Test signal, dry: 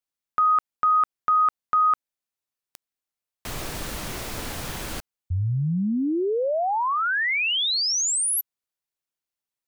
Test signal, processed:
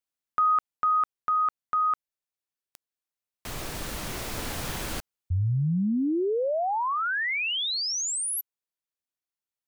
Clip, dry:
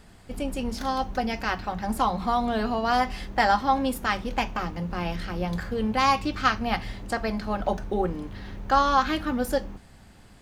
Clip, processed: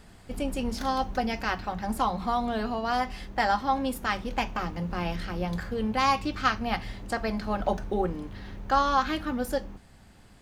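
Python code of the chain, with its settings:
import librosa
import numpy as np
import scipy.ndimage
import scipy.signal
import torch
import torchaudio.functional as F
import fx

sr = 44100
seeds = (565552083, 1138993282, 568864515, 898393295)

y = fx.rider(x, sr, range_db=3, speed_s=2.0)
y = y * librosa.db_to_amplitude(-3.0)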